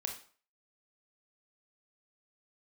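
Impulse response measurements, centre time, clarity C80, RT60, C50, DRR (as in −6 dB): 20 ms, 12.5 dB, 0.45 s, 8.0 dB, 2.0 dB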